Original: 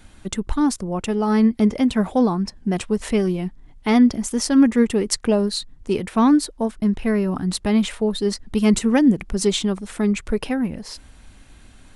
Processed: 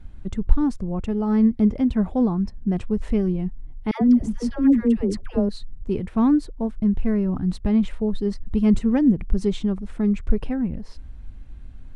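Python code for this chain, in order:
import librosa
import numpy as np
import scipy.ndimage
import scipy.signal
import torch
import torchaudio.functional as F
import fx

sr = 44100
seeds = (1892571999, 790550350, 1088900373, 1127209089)

y = fx.riaa(x, sr, side='playback')
y = fx.dispersion(y, sr, late='lows', ms=106.0, hz=720.0, at=(3.91, 5.49))
y = y * 10.0 ** (-8.5 / 20.0)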